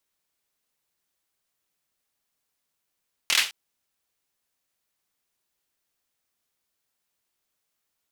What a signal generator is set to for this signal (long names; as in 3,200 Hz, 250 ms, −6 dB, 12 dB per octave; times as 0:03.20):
synth clap length 0.21 s, apart 25 ms, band 2,800 Hz, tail 0.31 s